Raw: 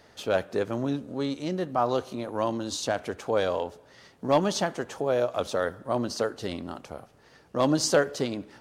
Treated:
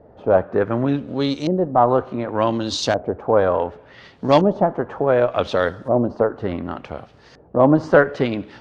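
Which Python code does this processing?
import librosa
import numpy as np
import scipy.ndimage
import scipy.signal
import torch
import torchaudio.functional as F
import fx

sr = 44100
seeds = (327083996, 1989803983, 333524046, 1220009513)

y = fx.filter_lfo_lowpass(x, sr, shape='saw_up', hz=0.68, low_hz=550.0, high_hz=5800.0, q=1.4)
y = fx.cheby_harmonics(y, sr, harmonics=(6,), levels_db=(-37,), full_scale_db=-6.0)
y = fx.low_shelf(y, sr, hz=110.0, db=5.5)
y = F.gain(torch.from_numpy(y), 7.5).numpy()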